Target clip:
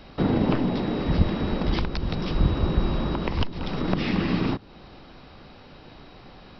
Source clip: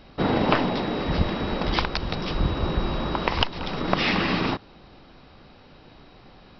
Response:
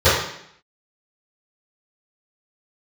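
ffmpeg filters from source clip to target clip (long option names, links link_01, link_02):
-filter_complex "[0:a]acrossover=split=380[link_01][link_02];[link_02]acompressor=threshold=-39dB:ratio=2.5[link_03];[link_01][link_03]amix=inputs=2:normalize=0,volume=3dB"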